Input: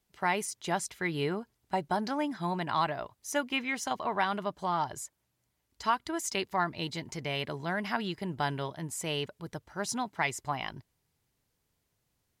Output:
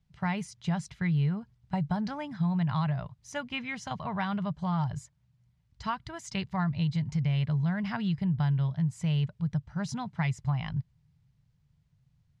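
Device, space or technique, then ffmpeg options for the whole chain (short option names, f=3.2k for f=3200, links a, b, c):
jukebox: -af "lowpass=5.3k,lowshelf=f=220:t=q:w=3:g=13.5,acompressor=threshold=-22dB:ratio=4,volume=-3dB"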